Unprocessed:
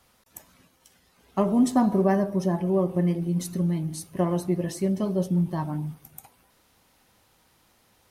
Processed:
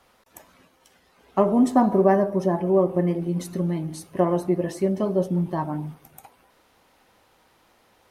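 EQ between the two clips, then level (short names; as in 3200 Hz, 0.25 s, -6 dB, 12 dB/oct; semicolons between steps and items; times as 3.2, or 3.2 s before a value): tone controls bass -13 dB, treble -4 dB; tilt -1.5 dB/oct; dynamic EQ 3700 Hz, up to -4 dB, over -47 dBFS, Q 0.77; +5.5 dB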